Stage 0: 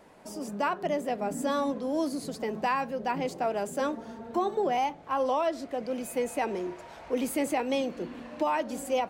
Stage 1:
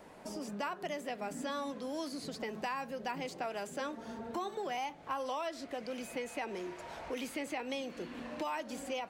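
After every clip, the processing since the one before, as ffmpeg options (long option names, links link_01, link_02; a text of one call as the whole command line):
ffmpeg -i in.wav -filter_complex "[0:a]acrossover=split=1300|5500[link_01][link_02][link_03];[link_01]acompressor=threshold=-41dB:ratio=4[link_04];[link_02]acompressor=threshold=-43dB:ratio=4[link_05];[link_03]acompressor=threshold=-58dB:ratio=4[link_06];[link_04][link_05][link_06]amix=inputs=3:normalize=0,volume=1dB" out.wav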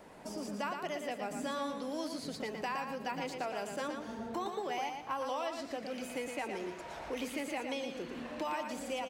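ffmpeg -i in.wav -af "aecho=1:1:116|232|348|464:0.501|0.15|0.0451|0.0135" out.wav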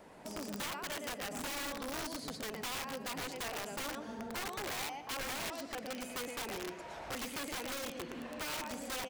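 ffmpeg -i in.wav -af "aeval=exprs='(mod(42.2*val(0)+1,2)-1)/42.2':channel_layout=same,volume=-1.5dB" out.wav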